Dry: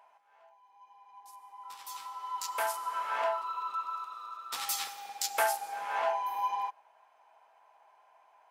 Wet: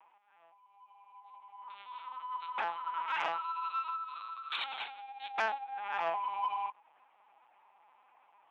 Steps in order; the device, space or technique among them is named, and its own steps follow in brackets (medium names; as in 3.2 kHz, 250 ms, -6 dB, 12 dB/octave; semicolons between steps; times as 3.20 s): 3.09–4.64 s: tilt EQ +4.5 dB/octave; talking toy (LPC vocoder at 8 kHz pitch kept; high-pass 540 Hz 12 dB/octave; peaking EQ 2.5 kHz +4.5 dB 0.29 oct; saturation -19 dBFS, distortion -23 dB); trim -1.5 dB